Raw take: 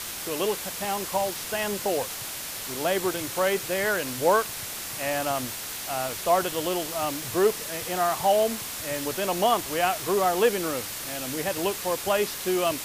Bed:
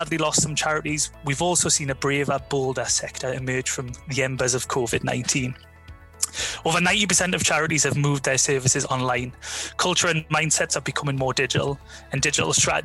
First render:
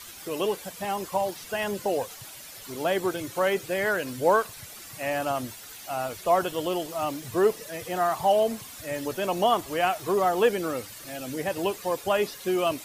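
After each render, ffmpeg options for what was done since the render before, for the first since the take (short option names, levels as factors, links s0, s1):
-af "afftdn=nr=12:nf=-35"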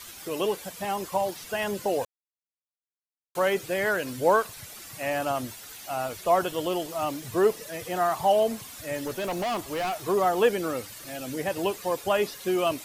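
-filter_complex "[0:a]asplit=3[s0][s1][s2];[s0]afade=t=out:st=9.04:d=0.02[s3];[s1]asoftclip=type=hard:threshold=0.0501,afade=t=in:st=9.04:d=0.02,afade=t=out:st=9.92:d=0.02[s4];[s2]afade=t=in:st=9.92:d=0.02[s5];[s3][s4][s5]amix=inputs=3:normalize=0,asplit=3[s6][s7][s8];[s6]atrim=end=2.05,asetpts=PTS-STARTPTS,afade=t=out:st=2.046:d=0.004:c=hsin[s9];[s7]atrim=start=2.05:end=3.35,asetpts=PTS-STARTPTS,volume=0[s10];[s8]atrim=start=3.35,asetpts=PTS-STARTPTS,afade=t=in:d=0.004:c=hsin[s11];[s9][s10][s11]concat=n=3:v=0:a=1"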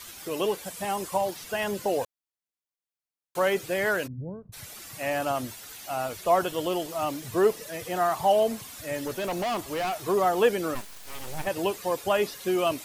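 -filter_complex "[0:a]asettb=1/sr,asplit=3[s0][s1][s2];[s0]atrim=end=0.664[s3];[s1]atrim=start=0.66:end=1.18,asetpts=PTS-STARTPTS,afade=t=in:d=0.004:c=qsin,afade=t=out:st=0.516:d=0.004:c=qsin,equalizer=f=9000:t=o:w=0.57:g=5.5[s4];[s2]atrim=start=1.176[s5];[s3][s4]acrossfade=d=0.004:c1=hsin:c2=qsin[s6];[s6][s5]acrossfade=d=0.004:c1=qsin:c2=hsin,asplit=3[s7][s8][s9];[s7]afade=t=out:st=4.06:d=0.02[s10];[s8]lowpass=f=150:t=q:w=1.8,afade=t=in:st=4.06:d=0.02,afade=t=out:st=4.52:d=0.02[s11];[s9]afade=t=in:st=4.52:d=0.02[s12];[s10][s11][s12]amix=inputs=3:normalize=0,asplit=3[s13][s14][s15];[s13]afade=t=out:st=10.74:d=0.02[s16];[s14]aeval=exprs='abs(val(0))':c=same,afade=t=in:st=10.74:d=0.02,afade=t=out:st=11.45:d=0.02[s17];[s15]afade=t=in:st=11.45:d=0.02[s18];[s16][s17][s18]amix=inputs=3:normalize=0"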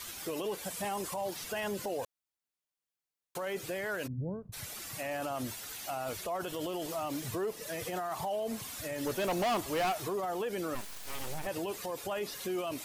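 -af "acompressor=threshold=0.0398:ratio=3,alimiter=level_in=1.5:limit=0.0631:level=0:latency=1:release=31,volume=0.668"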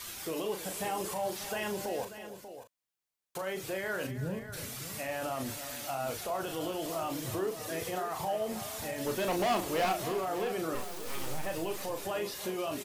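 -filter_complex "[0:a]asplit=2[s0][s1];[s1]adelay=37,volume=0.473[s2];[s0][s2]amix=inputs=2:normalize=0,asplit=2[s3][s4];[s4]aecho=0:1:322|588:0.2|0.251[s5];[s3][s5]amix=inputs=2:normalize=0"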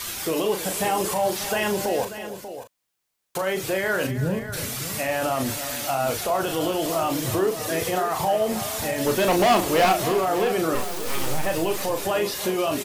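-af "volume=3.55"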